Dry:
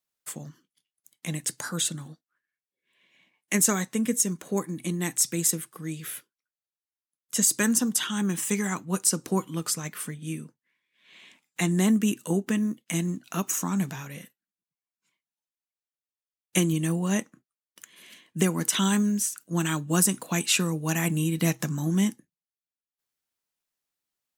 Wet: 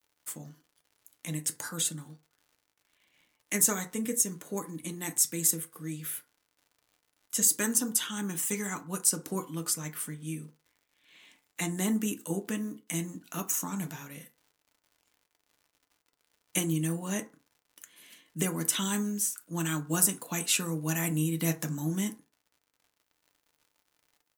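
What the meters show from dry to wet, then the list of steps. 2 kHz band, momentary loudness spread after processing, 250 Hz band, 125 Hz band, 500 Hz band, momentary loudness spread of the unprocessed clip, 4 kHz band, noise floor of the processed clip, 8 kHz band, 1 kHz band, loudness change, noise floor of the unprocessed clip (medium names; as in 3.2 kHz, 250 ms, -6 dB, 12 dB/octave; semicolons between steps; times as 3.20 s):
-5.5 dB, 14 LU, -7.0 dB, -6.0 dB, -6.0 dB, 13 LU, -5.0 dB, -80 dBFS, -2.0 dB, -5.5 dB, -4.0 dB, under -85 dBFS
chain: treble shelf 9.7 kHz +11 dB; crackle 110 per s -46 dBFS; FDN reverb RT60 0.34 s, low-frequency decay 0.75×, high-frequency decay 0.45×, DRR 5.5 dB; trim -6.5 dB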